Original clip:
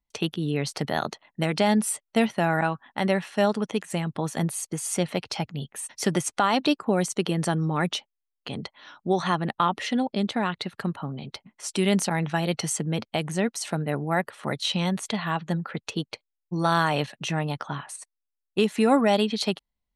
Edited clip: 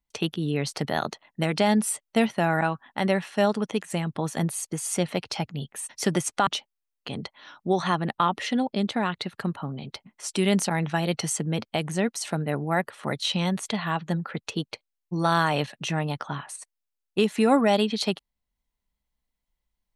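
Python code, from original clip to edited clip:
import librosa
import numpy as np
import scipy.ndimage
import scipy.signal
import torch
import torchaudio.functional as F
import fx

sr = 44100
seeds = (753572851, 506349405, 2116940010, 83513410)

y = fx.edit(x, sr, fx.cut(start_s=6.47, length_s=1.4), tone=tone)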